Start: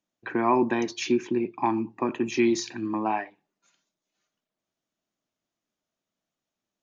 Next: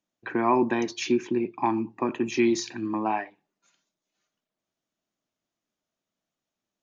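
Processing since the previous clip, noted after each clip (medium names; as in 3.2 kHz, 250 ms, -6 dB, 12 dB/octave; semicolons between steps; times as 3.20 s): no audible change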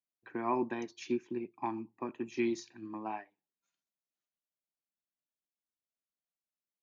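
upward expansion 1.5:1, over -41 dBFS; trim -9 dB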